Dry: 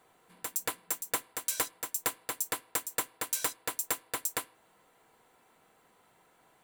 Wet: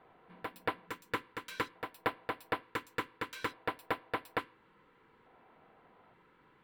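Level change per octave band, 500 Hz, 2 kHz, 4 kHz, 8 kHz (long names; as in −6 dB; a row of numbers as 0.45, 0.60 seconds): +2.5, +1.0, −6.0, −25.5 decibels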